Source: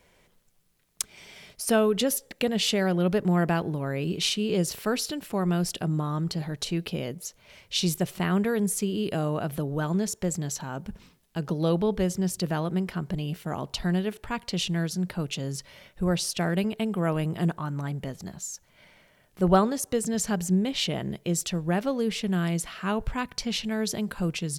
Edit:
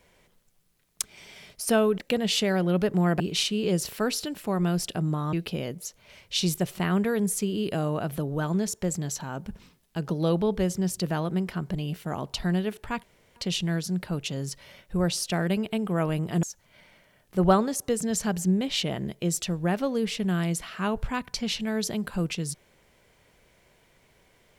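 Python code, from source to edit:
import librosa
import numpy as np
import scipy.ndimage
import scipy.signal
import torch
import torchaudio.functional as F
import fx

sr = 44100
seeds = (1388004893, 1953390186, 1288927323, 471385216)

y = fx.edit(x, sr, fx.cut(start_s=1.98, length_s=0.31),
    fx.cut(start_s=3.51, length_s=0.55),
    fx.cut(start_s=6.19, length_s=0.54),
    fx.insert_room_tone(at_s=14.43, length_s=0.33),
    fx.cut(start_s=17.5, length_s=0.97), tone=tone)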